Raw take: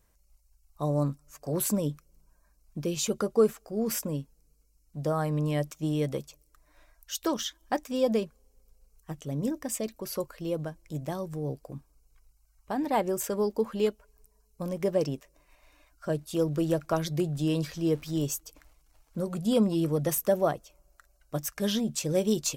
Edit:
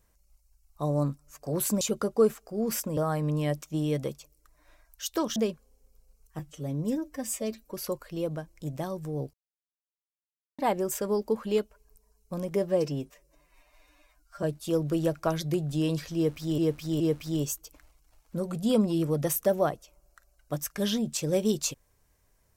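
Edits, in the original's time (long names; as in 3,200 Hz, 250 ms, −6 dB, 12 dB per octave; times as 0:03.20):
0:01.81–0:03.00: remove
0:04.16–0:05.06: remove
0:07.45–0:08.09: remove
0:09.12–0:10.01: time-stretch 1.5×
0:11.62–0:12.87: silence
0:14.84–0:16.09: time-stretch 1.5×
0:17.82–0:18.24: repeat, 3 plays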